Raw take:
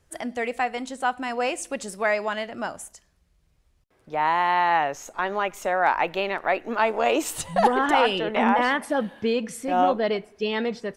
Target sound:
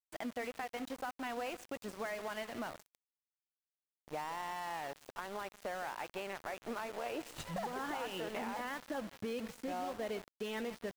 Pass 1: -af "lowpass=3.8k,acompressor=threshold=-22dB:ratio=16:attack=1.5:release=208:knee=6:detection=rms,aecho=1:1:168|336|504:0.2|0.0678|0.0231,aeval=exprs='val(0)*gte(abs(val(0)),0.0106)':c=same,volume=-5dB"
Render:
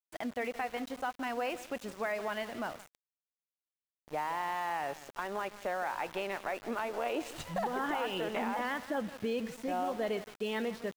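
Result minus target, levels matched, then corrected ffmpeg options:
compressor: peak gain reduction -6 dB
-af "lowpass=3.8k,acompressor=threshold=-28.5dB:ratio=16:attack=1.5:release=208:knee=6:detection=rms,aecho=1:1:168|336|504:0.2|0.0678|0.0231,aeval=exprs='val(0)*gte(abs(val(0)),0.0106)':c=same,volume=-5dB"

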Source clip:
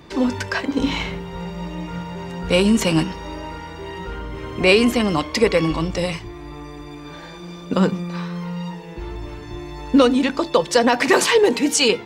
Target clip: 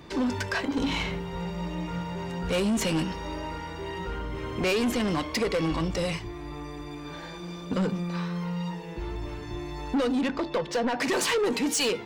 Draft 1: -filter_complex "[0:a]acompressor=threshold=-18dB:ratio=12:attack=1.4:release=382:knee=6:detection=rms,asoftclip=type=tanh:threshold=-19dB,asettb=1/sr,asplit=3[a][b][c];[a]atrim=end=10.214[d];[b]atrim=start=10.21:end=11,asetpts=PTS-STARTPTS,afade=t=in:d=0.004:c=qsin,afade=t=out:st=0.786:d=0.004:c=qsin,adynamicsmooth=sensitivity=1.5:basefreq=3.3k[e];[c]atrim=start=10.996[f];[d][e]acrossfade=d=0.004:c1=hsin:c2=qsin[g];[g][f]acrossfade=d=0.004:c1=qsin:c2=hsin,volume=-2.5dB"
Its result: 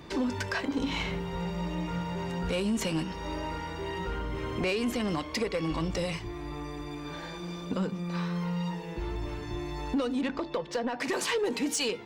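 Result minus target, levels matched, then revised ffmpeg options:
compressor: peak gain reduction +8.5 dB
-filter_complex "[0:a]acompressor=threshold=-8.5dB:ratio=12:attack=1.4:release=382:knee=6:detection=rms,asoftclip=type=tanh:threshold=-19dB,asettb=1/sr,asplit=3[a][b][c];[a]atrim=end=10.214[d];[b]atrim=start=10.21:end=11,asetpts=PTS-STARTPTS,afade=t=in:d=0.004:c=qsin,afade=t=out:st=0.786:d=0.004:c=qsin,adynamicsmooth=sensitivity=1.5:basefreq=3.3k[e];[c]atrim=start=10.996[f];[d][e]acrossfade=d=0.004:c1=hsin:c2=qsin[g];[g][f]acrossfade=d=0.004:c1=qsin:c2=hsin,volume=-2.5dB"

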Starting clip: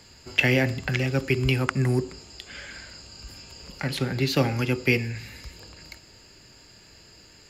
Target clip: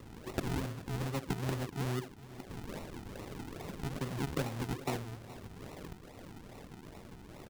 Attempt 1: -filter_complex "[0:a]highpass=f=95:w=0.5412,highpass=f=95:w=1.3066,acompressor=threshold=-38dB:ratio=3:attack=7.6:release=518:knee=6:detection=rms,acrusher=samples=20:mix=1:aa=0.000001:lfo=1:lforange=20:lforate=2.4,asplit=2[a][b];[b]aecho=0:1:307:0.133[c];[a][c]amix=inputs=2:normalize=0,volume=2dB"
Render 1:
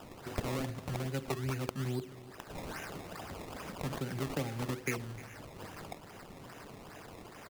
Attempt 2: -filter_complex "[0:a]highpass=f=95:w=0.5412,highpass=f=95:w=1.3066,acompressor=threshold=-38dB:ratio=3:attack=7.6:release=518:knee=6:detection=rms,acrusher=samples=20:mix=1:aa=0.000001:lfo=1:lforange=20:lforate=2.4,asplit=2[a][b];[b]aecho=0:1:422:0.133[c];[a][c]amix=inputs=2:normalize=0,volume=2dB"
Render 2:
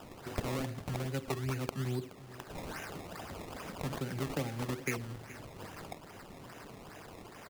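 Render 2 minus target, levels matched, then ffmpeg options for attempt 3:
decimation with a swept rate: distortion -6 dB
-filter_complex "[0:a]highpass=f=95:w=0.5412,highpass=f=95:w=1.3066,acompressor=threshold=-38dB:ratio=3:attack=7.6:release=518:knee=6:detection=rms,acrusher=samples=54:mix=1:aa=0.000001:lfo=1:lforange=54:lforate=2.4,asplit=2[a][b];[b]aecho=0:1:422:0.133[c];[a][c]amix=inputs=2:normalize=0,volume=2dB"

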